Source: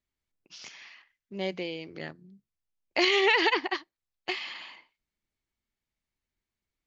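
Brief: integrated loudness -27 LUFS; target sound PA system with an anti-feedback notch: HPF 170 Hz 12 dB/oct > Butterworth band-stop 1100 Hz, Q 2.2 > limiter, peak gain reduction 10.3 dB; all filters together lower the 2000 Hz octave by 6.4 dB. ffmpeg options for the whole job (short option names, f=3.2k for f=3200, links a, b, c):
-af "highpass=170,asuperstop=centerf=1100:order=8:qfactor=2.2,equalizer=f=2k:t=o:g=-7.5,volume=10.5dB,alimiter=limit=-14.5dB:level=0:latency=1"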